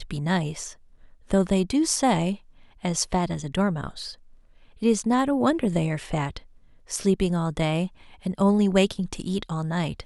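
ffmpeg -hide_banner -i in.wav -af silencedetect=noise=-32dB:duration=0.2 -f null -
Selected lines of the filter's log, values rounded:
silence_start: 0.71
silence_end: 1.31 | silence_duration: 0.60
silence_start: 2.35
silence_end: 2.85 | silence_duration: 0.49
silence_start: 4.11
silence_end: 4.82 | silence_duration: 0.71
silence_start: 6.38
silence_end: 6.90 | silence_duration: 0.52
silence_start: 7.87
silence_end: 8.26 | silence_duration: 0.38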